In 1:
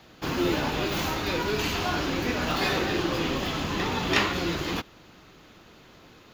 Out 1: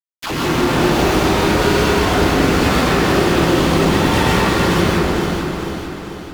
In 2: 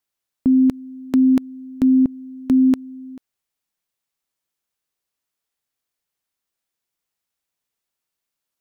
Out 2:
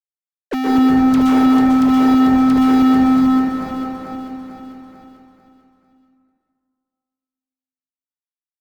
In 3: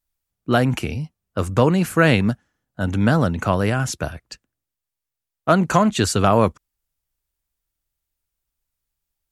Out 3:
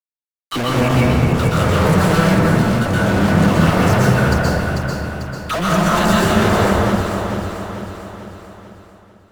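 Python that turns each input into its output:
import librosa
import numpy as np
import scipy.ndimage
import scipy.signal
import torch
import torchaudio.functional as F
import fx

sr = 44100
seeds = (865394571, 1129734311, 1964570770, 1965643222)

p1 = fx.high_shelf(x, sr, hz=11000.0, db=-10.0)
p2 = fx.dispersion(p1, sr, late='lows', ms=83.0, hz=910.0)
p3 = fx.filter_lfo_notch(p2, sr, shape='saw_down', hz=7.8, low_hz=670.0, high_hz=2400.0, q=1.7)
p4 = fx.fuzz(p3, sr, gain_db=36.0, gate_db=-42.0)
p5 = p4 + fx.echo_alternate(p4, sr, ms=222, hz=2200.0, feedback_pct=62, wet_db=-2.5, dry=0)
p6 = fx.rev_plate(p5, sr, seeds[0], rt60_s=1.9, hf_ratio=0.3, predelay_ms=110, drr_db=-7.0)
p7 = fx.band_squash(p6, sr, depth_pct=40)
y = p7 * 10.0 ** (-9.5 / 20.0)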